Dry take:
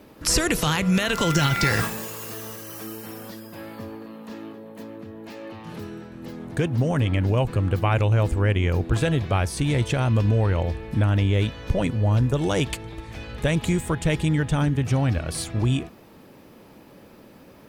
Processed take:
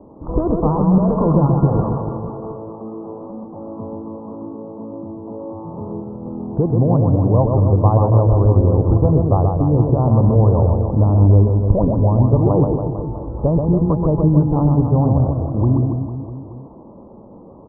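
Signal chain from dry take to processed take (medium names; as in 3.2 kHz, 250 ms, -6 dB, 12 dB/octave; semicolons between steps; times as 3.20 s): steep low-pass 1.1 kHz 72 dB/octave; reverse bouncing-ball echo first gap 130 ms, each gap 1.15×, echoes 5; trim +6 dB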